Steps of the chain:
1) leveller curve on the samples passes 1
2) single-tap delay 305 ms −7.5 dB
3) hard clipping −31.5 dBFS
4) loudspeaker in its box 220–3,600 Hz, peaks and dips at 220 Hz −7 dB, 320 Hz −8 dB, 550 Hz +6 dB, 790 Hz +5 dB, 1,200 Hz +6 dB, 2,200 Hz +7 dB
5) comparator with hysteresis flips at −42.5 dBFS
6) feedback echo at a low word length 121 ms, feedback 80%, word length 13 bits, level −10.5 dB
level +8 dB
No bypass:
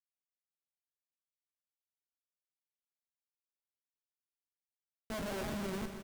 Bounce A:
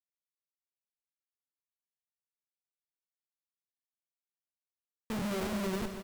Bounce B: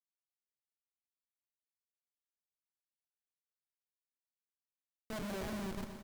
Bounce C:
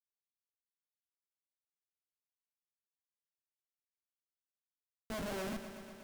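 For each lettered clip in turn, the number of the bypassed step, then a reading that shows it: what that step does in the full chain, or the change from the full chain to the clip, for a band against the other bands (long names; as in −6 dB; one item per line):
3, distortion level −4 dB
1, change in integrated loudness −2.0 LU
2, change in momentary loudness spread +3 LU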